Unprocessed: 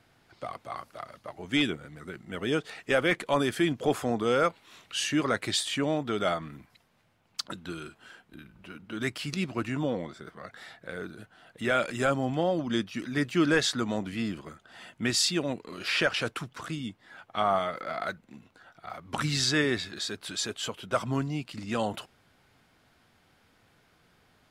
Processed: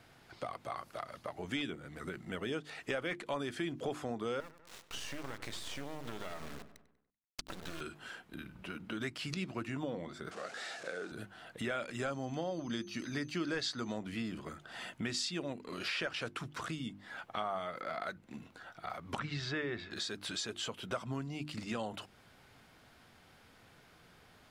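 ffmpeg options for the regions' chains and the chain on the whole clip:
-filter_complex "[0:a]asettb=1/sr,asplit=3[a][b][c];[a]atrim=end=4.404[d];[b]atrim=start=4.4:end=7.81,asetpts=PTS-STARTPTS,afade=t=in:d=0.004:c=qsin,afade=t=out:st=3.406:d=0.004:c=qsin,acompressor=threshold=-35dB:ratio=4:attack=3.2:release=140:knee=1:detection=peak,acrusher=bits=5:dc=4:mix=0:aa=0.000001,asplit=2[e][f];[f]adelay=96,lowpass=f=3.3k:p=1,volume=-14.5dB,asplit=2[g][h];[h]adelay=96,lowpass=f=3.3k:p=1,volume=0.53,asplit=2[i][j];[j]adelay=96,lowpass=f=3.3k:p=1,volume=0.53,asplit=2[k][l];[l]adelay=96,lowpass=f=3.3k:p=1,volume=0.53,asplit=2[m][n];[n]adelay=96,lowpass=f=3.3k:p=1,volume=0.53[o];[e][g][i][k][m][o]amix=inputs=6:normalize=0,atrim=end_sample=150381[p];[c]atrim=start=7.806[q];[d][p]acrossfade=d=0.004:c1=hsin:c2=qsin[r];[r][q]acrossfade=d=0.004:c1=qsin:c2=hsin,asettb=1/sr,asplit=3[s][t][u];[s]atrim=end=10.314[v];[t]atrim=start=10.31:end=11.12,asetpts=PTS-STARTPTS,afade=t=in:d=0.004:c=qsin,afade=t=out:st=0.806:d=0.004:c=qsin,aeval=exprs='val(0)+0.5*0.00708*sgn(val(0))':c=same,highpass=360,equalizer=f=1k:t=q:w=4:g=-9,equalizer=f=2k:t=q:w=4:g=-6,equalizer=f=3.4k:t=q:w=4:g=-4,lowpass=f=8.4k:w=0.5412,lowpass=f=8.4k:w=1.3066[w];[u]atrim=start=11.116[x];[v][w]acrossfade=d=0.004:c1=hsin:c2=qsin[y];[y][x]acrossfade=d=0.004:c1=qsin:c2=hsin,asettb=1/sr,asplit=3[z][aa][ab];[z]atrim=end=12.054[ac];[aa]atrim=start=12.05:end=13.93,asetpts=PTS-STARTPTS,afade=t=in:d=0.004:c=qsin,afade=t=out:st=1.876:d=0.004:c=qsin,equalizer=f=4.6k:t=o:w=0.29:g=9,aeval=exprs='val(0)+0.00224*sin(2*PI*6200*n/s)':c=same[ad];[ab]atrim=start=13.926[ae];[ac][ad]acrossfade=d=0.004:c1=hsin:c2=qsin[af];[af][ae]acrossfade=d=0.004:c1=qsin:c2=hsin,asettb=1/sr,asplit=3[ag][ah][ai];[ag]atrim=end=19.194[aj];[ah]atrim=start=19.19:end=19.91,asetpts=PTS-STARTPTS,afade=t=in:d=0.004:c=qsin,afade=t=out:st=0.716:d=0.004:c=qsin,lowpass=2.7k,bandreject=f=260:w=6.7[ak];[ai]atrim=start=19.906[al];[aj][ak]acrossfade=d=0.004:c1=hsin:c2=qsin[am];[am][al]acrossfade=d=0.004:c1=qsin:c2=hsin,acrossover=split=8700[an][ao];[ao]acompressor=threshold=-58dB:ratio=4:attack=1:release=60[ap];[an][ap]amix=inputs=2:normalize=0,bandreject=f=50:t=h:w=6,bandreject=f=100:t=h:w=6,bandreject=f=150:t=h:w=6,bandreject=f=200:t=h:w=6,bandreject=f=250:t=h:w=6,bandreject=f=300:t=h:w=6,bandreject=f=350:t=h:w=6,acompressor=threshold=-42dB:ratio=3,volume=3dB"

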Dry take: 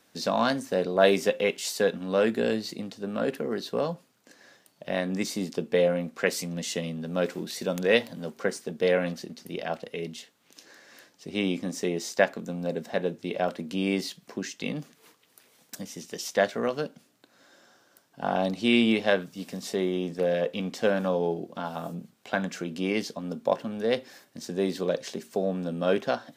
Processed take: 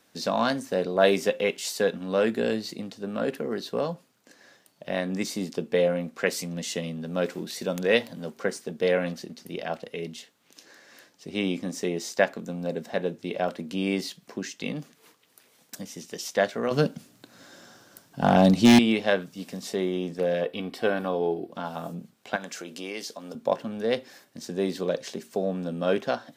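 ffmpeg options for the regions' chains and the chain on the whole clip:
-filter_complex "[0:a]asettb=1/sr,asplit=3[a][b][c];[a]atrim=end=16.714[d];[b]atrim=start=16.71:end=18.79,asetpts=PTS-STARTPTS,afade=t=in:d=0.004:c=qsin,afade=t=out:st=2.076:d=0.004:c=qsin,bass=f=250:g=9,treble=f=4k:g=3,acontrast=66,aeval=exprs='0.376*(abs(mod(val(0)/0.376+3,4)-2)-1)':c=same[e];[c]atrim=start=18.786[f];[d][e]acrossfade=d=0.004:c1=hsin:c2=qsin[g];[g][f]acrossfade=d=0.004:c1=qsin:c2=hsin,asettb=1/sr,asplit=3[h][i][j];[h]atrim=end=20.434[k];[i]atrim=start=20.43:end=21.52,asetpts=PTS-STARTPTS,afade=t=in:d=0.004:c=qsin,afade=t=out:st=1.086:d=0.004:c=qsin,equalizer=f=6.6k:t=o:w=0.38:g=-14.5,aecho=1:1:2.7:0.38,atrim=end_sample=48069[l];[j]atrim=start=21.516[m];[k][l]acrossfade=d=0.004:c1=hsin:c2=qsin[n];[n][m]acrossfade=d=0.004:c1=qsin:c2=hsin,asettb=1/sr,asplit=3[o][p][q];[o]atrim=end=22.364[r];[p]atrim=start=22.36:end=23.35,asetpts=PTS-STARTPTS,afade=t=in:d=0.004:c=qsin,afade=t=out:st=0.986:d=0.004:c=qsin,bass=f=250:g=-14,treble=f=4k:g=6,acompressor=threshold=-34dB:ratio=2:attack=3.2:release=140:knee=1:detection=peak[s];[q]atrim=start=23.346[t];[r][s]acrossfade=d=0.004:c1=hsin:c2=qsin[u];[u][t]acrossfade=d=0.004:c1=qsin:c2=hsin"

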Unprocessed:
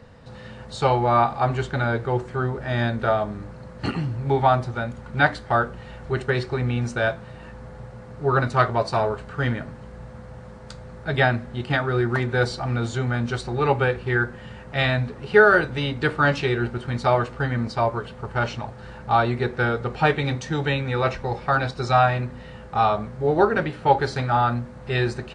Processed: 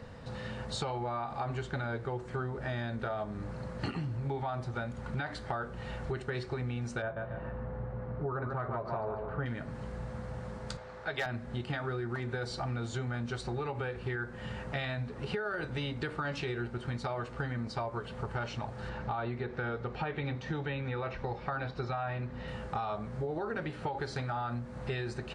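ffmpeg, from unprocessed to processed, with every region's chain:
-filter_complex "[0:a]asettb=1/sr,asplit=3[a][b][c];[a]atrim=end=7.024[d];[b]atrim=start=7.02:end=9.46,asetpts=PTS-STARTPTS,afade=t=in:d=0.004:c=qsin,afade=t=out:st=2.436:d=0.004:c=qsin,lowpass=1.5k,aecho=1:1:142|284|426:0.355|0.106|0.0319,atrim=end_sample=107604[e];[c]atrim=start=9.456[f];[d][e]acrossfade=d=0.004:c1=hsin:c2=qsin[g];[g][f]acrossfade=d=0.004:c1=qsin:c2=hsin,asettb=1/sr,asplit=3[h][i][j];[h]atrim=end=10.774[k];[i]atrim=start=10.77:end=11.26,asetpts=PTS-STARTPTS,afade=t=in:d=0.004:c=qsin,afade=t=out:st=0.486:d=0.004:c=qsin,acrossover=split=430 6300:gain=0.2 1 0.2[l][m][n];[l][m][n]amix=inputs=3:normalize=0,volume=15dB,asoftclip=hard,volume=-15dB[o];[j]atrim=start=11.256[p];[k][o]acrossfade=d=0.004:c1=hsin:c2=qsin[q];[q][p]acrossfade=d=0.004:c1=qsin:c2=hsin,asettb=1/sr,asplit=3[r][s][t];[r]atrim=end=18.894[u];[s]atrim=start=18.89:end=22.48,asetpts=PTS-STARTPTS,afade=t=in:d=0.004:c=qsin,afade=t=out:st=3.586:d=0.004:c=qsin,acrossover=split=3600[v][w];[w]acompressor=threshold=-50dB:ratio=4:attack=1:release=60[x];[v][x]amix=inputs=2:normalize=0,lowpass=5.3k[y];[t]atrim=start=22.476[z];[u][y]acrossfade=d=0.004:c1=hsin:c2=qsin[aa];[aa][z]acrossfade=d=0.004:c1=qsin:c2=hsin,alimiter=limit=-15dB:level=0:latency=1:release=62,acompressor=threshold=-33dB:ratio=6"

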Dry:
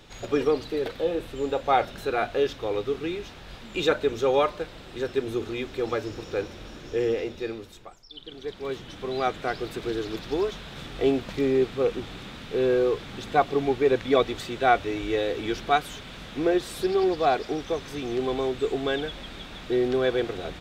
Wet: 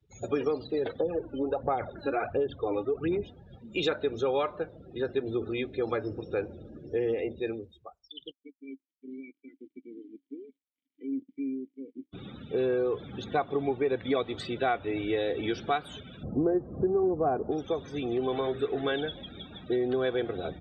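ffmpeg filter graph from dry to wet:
-filter_complex "[0:a]asettb=1/sr,asplit=3[a][b][c];[a]atrim=end=1.004[d];[b]atrim=start=1:end=3.23,asetpts=PTS-STARTPTS,afade=t=in:d=0.004:c=qsin,afade=t=out:st=2.226:d=0.004:c=qsin,highshelf=f=2.7k:g=-9.5,aphaser=in_gain=1:out_gain=1:delay=3.6:decay=0.63:speed=1.4:type=sinusoidal,acompressor=threshold=-22dB:ratio=2.5:attack=3.2:release=140:knee=1:detection=peak[e];[c]atrim=start=3.226[f];[d][e]acrossfade=d=0.004:c1=hsin:c2=qsin[g];[g][f]acrossfade=d=0.004:c1=qsin:c2=hsin,asettb=1/sr,asplit=3[h][i][j];[h]atrim=end=8.314[k];[i]atrim=start=8.31:end=12.13,asetpts=PTS-STARTPTS,afade=t=in:d=0.004:c=qsin,afade=t=out:st=3.816:d=0.004:c=qsin,acrusher=bits=4:mix=0:aa=0.5,acompressor=threshold=-27dB:ratio=2:attack=3.2:release=140:knee=1:detection=peak,asplit=3[l][m][n];[l]bandpass=f=270:t=q:w=8,volume=0dB[o];[m]bandpass=f=2.29k:t=q:w=8,volume=-6dB[p];[n]bandpass=f=3.01k:t=q:w=8,volume=-9dB[q];[o][p][q]amix=inputs=3:normalize=0[r];[j]atrim=start=12.126[s];[k][r]acrossfade=d=0.004:c1=hsin:c2=qsin[t];[t][s]acrossfade=d=0.004:c1=qsin:c2=hsin,asettb=1/sr,asplit=3[u][v][w];[u]atrim=end=16.234[x];[v]atrim=start=16.23:end=17.51,asetpts=PTS-STARTPTS,afade=t=in:d=0.004:c=qsin,afade=t=out:st=1.276:d=0.004:c=qsin,lowpass=1.3k,lowshelf=f=450:g=11[y];[w]atrim=start=17.506[z];[x][y]acrossfade=d=0.004:c1=hsin:c2=qsin[aa];[aa][z]acrossfade=d=0.004:c1=qsin:c2=hsin,asettb=1/sr,asplit=3[ab][ac][ad];[ab]atrim=end=18.324[ae];[ac]atrim=start=18.32:end=18.92,asetpts=PTS-STARTPTS,afade=t=in:d=0.004:c=qsin,afade=t=out:st=0.596:d=0.004:c=qsin,equalizer=f=1.6k:w=2:g=4,bandreject=f=50:t=h:w=6,bandreject=f=100:t=h:w=6,bandreject=f=150:t=h:w=6,bandreject=f=200:t=h:w=6,bandreject=f=250:t=h:w=6,bandreject=f=300:t=h:w=6,bandreject=f=350:t=h:w=6,bandreject=f=400:t=h:w=6,bandreject=f=450:t=h:w=6,asplit=2[af][ag];[ag]adelay=17,volume=-11dB[ah];[af][ah]amix=inputs=2:normalize=0,atrim=end_sample=26460[ai];[ad]atrim=start=18.916[aj];[ae][ai]acrossfade=d=0.004:c1=hsin:c2=qsin[ak];[ak][aj]acrossfade=d=0.004:c1=qsin:c2=hsin,afftdn=nr=35:nf=-39,highpass=f=65:w=0.5412,highpass=f=65:w=1.3066,acompressor=threshold=-25dB:ratio=4"

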